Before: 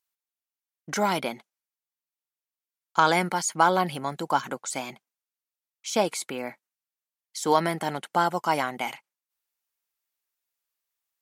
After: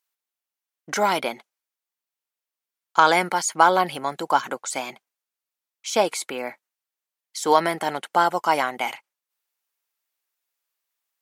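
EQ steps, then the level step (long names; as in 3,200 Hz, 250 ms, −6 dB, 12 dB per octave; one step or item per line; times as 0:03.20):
bass and treble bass −11 dB, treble −2 dB
+4.5 dB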